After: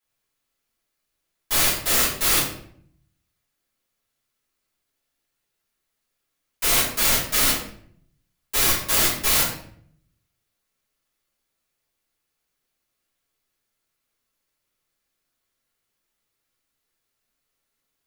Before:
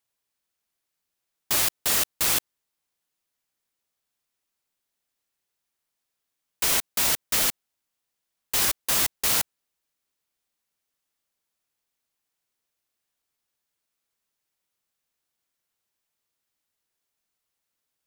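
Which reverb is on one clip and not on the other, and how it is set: simulated room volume 99 m³, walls mixed, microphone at 3 m; trim -6.5 dB

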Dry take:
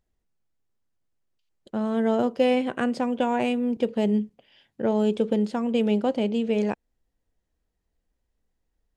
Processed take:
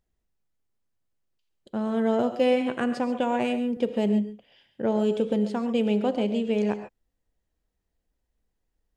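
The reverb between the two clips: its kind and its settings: gated-style reverb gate 160 ms rising, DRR 9 dB; trim -1.5 dB

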